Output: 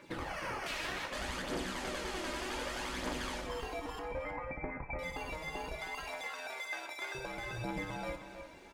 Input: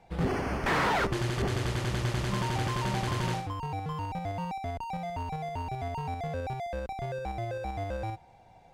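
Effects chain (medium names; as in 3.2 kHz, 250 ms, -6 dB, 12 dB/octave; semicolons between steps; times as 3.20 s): spectral gate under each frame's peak -10 dB weak; 5.75–7.15 s: high-pass 820 Hz 12 dB/octave; compression 12:1, threshold -47 dBFS, peak gain reduction 18.5 dB; phaser 0.65 Hz, delay 3.3 ms, feedback 53%; 3.99–4.99 s: brick-wall FIR low-pass 2.6 kHz; echo from a far wall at 54 m, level -8 dB; on a send at -3.5 dB: reverberation, pre-delay 3 ms; on the sum: trim +7.5 dB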